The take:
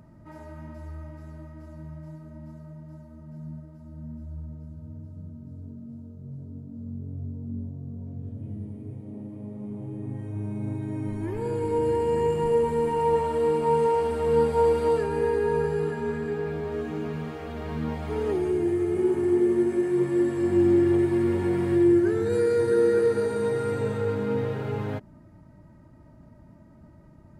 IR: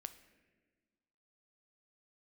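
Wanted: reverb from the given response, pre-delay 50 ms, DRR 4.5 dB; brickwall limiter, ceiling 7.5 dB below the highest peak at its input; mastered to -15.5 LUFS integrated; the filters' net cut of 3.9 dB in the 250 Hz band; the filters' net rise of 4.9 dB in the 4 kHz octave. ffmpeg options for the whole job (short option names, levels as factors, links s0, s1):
-filter_complex "[0:a]equalizer=f=250:t=o:g=-7,equalizer=f=4000:t=o:g=6.5,alimiter=limit=0.0891:level=0:latency=1,asplit=2[s0][s1];[1:a]atrim=start_sample=2205,adelay=50[s2];[s1][s2]afir=irnorm=-1:irlink=0,volume=1[s3];[s0][s3]amix=inputs=2:normalize=0,volume=5.62"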